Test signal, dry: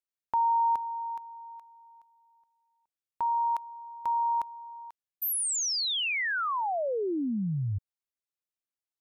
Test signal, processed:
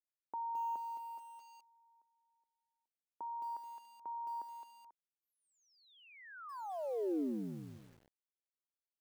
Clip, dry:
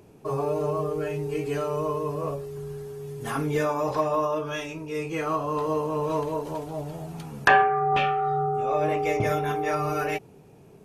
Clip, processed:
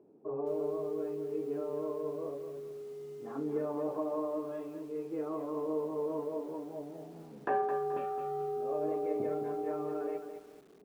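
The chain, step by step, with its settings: ladder band-pass 380 Hz, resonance 30%; lo-fi delay 0.215 s, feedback 35%, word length 10-bit, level -8 dB; gain +3 dB

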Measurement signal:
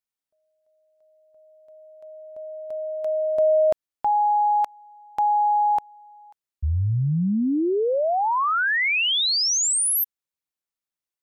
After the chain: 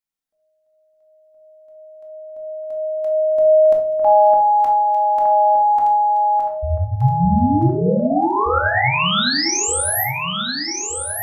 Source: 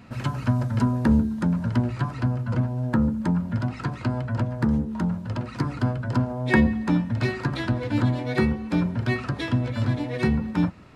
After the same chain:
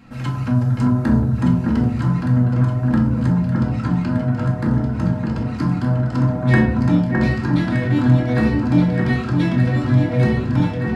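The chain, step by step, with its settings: notch 560 Hz, Q 12; echo with dull and thin repeats by turns 0.61 s, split 1800 Hz, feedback 72%, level -2.5 dB; shoebox room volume 540 m³, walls furnished, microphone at 2.2 m; gain -1.5 dB

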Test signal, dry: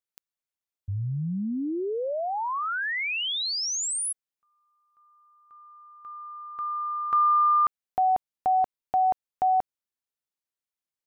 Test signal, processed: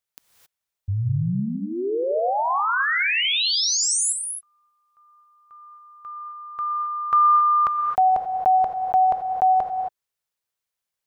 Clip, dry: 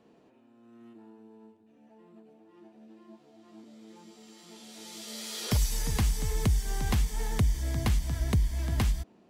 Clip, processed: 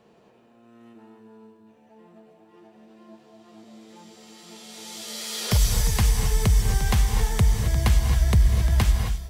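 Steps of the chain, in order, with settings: bell 280 Hz -13 dB 0.42 oct; non-linear reverb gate 0.29 s rising, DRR 5 dB; gain +6 dB

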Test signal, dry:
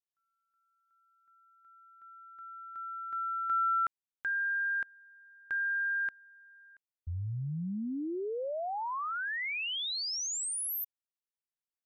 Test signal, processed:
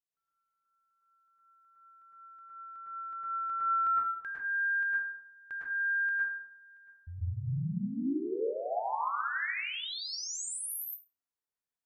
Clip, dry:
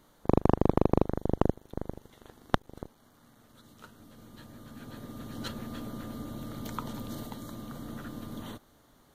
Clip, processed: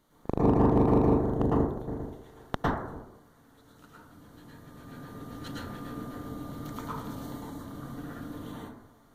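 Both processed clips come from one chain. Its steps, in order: plate-style reverb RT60 0.79 s, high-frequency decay 0.3×, pre-delay 95 ms, DRR -7 dB; gain -7 dB

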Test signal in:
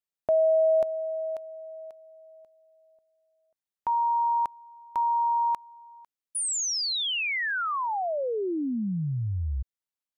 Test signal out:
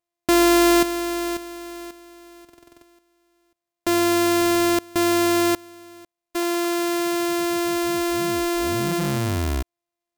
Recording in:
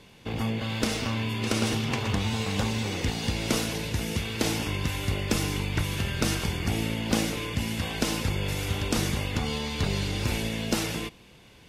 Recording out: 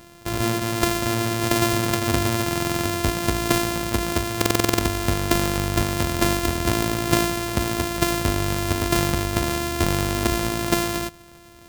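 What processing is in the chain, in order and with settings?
sample sorter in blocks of 128 samples; high shelf 5700 Hz +4.5 dB; stuck buffer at 2.44/4.37, samples 2048, times 8; gain +5.5 dB

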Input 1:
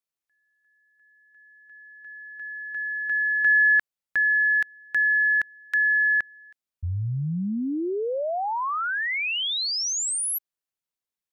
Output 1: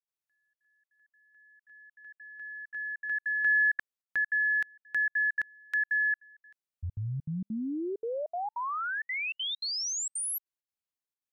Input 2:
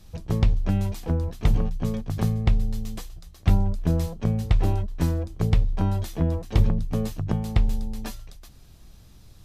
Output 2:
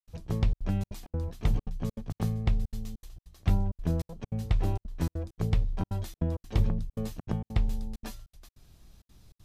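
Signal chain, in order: step gate ".xxxxxx.xxx.xx" 198 bpm -60 dB; gain -6 dB

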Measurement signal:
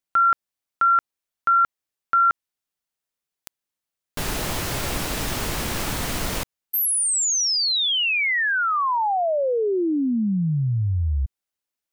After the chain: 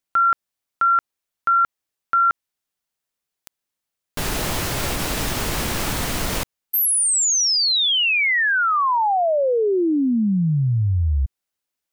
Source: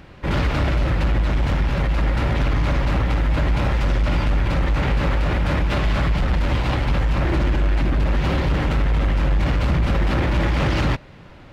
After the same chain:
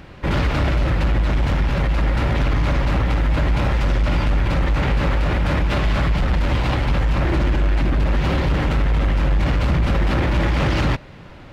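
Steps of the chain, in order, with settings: limiter -16 dBFS; gain +3 dB

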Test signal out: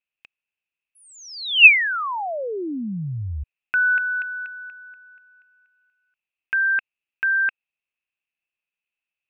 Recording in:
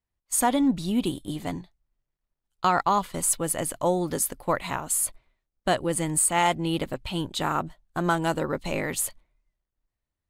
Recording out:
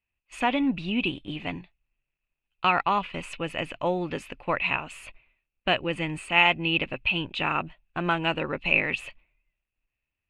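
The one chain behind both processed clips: synth low-pass 2600 Hz, resonance Q 15; gain -3 dB

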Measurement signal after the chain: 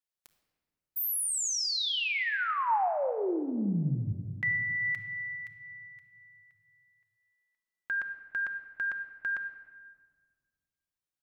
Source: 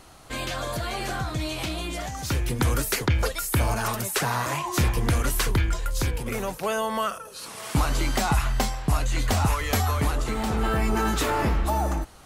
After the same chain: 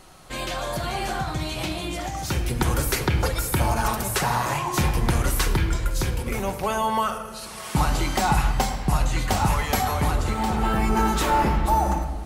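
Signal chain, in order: dynamic EQ 850 Hz, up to +7 dB, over -45 dBFS, Q 5; shoebox room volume 2200 m³, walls mixed, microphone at 1 m

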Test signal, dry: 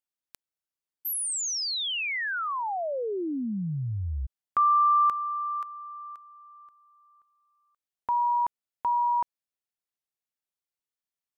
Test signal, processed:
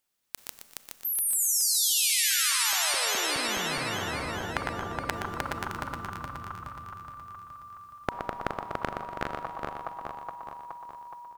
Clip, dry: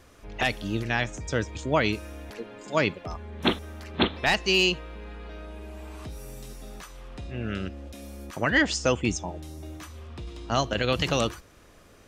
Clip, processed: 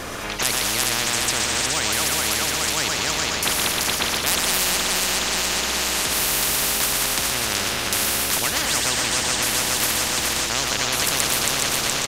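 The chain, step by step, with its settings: regenerating reverse delay 0.21 s, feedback 70%, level -5 dB; AGC gain up to 7 dB; in parallel at -3 dB: limiter -13 dBFS; on the sum: feedback echo 0.121 s, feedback 41%, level -8 dB; Schroeder reverb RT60 2.3 s, combs from 29 ms, DRR 13 dB; spectral compressor 10:1; gain -1 dB

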